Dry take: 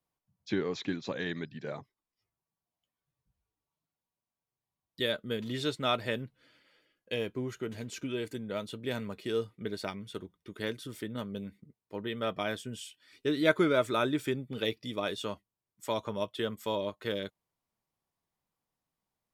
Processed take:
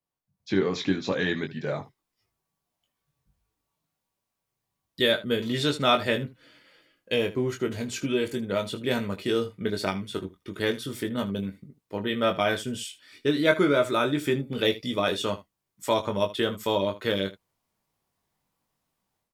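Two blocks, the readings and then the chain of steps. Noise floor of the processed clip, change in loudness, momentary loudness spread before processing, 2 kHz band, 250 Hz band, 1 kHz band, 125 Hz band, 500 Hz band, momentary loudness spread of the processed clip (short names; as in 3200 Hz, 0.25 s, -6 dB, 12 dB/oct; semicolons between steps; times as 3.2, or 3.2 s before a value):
-84 dBFS, +7.0 dB, 13 LU, +7.0 dB, +7.0 dB, +7.5 dB, +7.0 dB, +7.0 dB, 11 LU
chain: AGC gain up to 12.5 dB; early reflections 21 ms -5.5 dB, 78 ms -16 dB; gain -5 dB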